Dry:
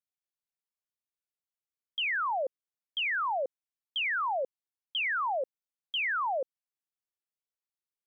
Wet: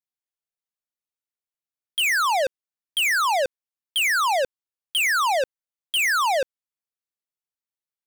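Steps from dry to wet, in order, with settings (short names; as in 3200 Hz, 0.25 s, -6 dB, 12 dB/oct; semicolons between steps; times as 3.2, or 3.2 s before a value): sample leveller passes 5; gain +7 dB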